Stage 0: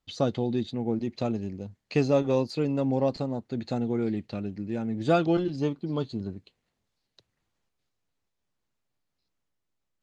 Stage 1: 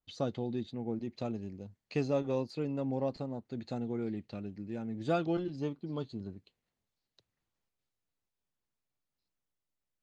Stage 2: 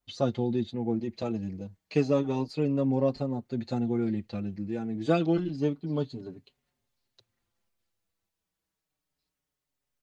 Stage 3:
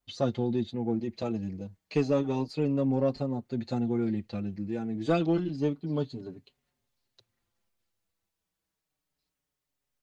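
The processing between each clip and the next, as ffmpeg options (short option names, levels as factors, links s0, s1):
-af "adynamicequalizer=threshold=0.00501:dfrequency=3100:dqfactor=0.7:tfrequency=3100:tqfactor=0.7:attack=5:release=100:ratio=0.375:range=2:mode=cutabove:tftype=highshelf,volume=0.398"
-filter_complex "[0:a]asplit=2[s0][s1];[s1]adelay=5.2,afreqshift=-0.29[s2];[s0][s2]amix=inputs=2:normalize=1,volume=2.66"
-af "asoftclip=type=tanh:threshold=0.2"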